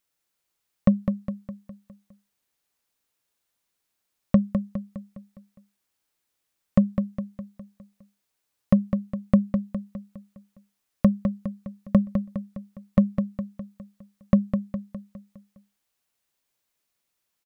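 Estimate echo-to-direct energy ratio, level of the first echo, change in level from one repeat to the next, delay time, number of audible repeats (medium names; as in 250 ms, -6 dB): -6.0 dB, -7.0 dB, -6.0 dB, 205 ms, 5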